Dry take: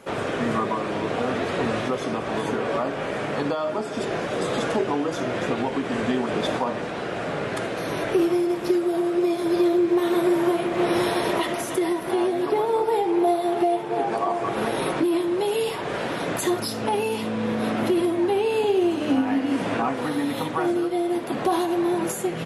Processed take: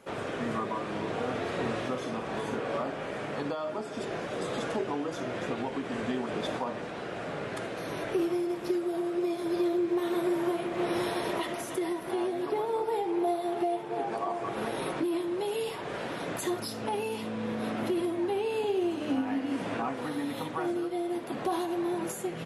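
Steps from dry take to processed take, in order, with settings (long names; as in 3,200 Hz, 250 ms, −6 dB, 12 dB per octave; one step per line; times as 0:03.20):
0:00.70–0:02.97: double-tracking delay 48 ms −6 dB
level −8 dB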